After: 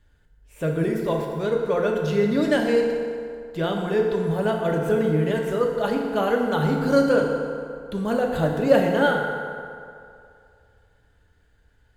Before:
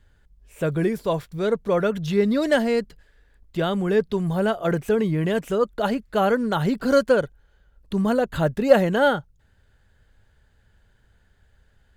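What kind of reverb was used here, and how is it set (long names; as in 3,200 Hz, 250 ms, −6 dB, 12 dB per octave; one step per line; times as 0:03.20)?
feedback delay network reverb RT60 2.4 s, low-frequency decay 0.85×, high-frequency decay 0.6×, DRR 0 dB
level −3.5 dB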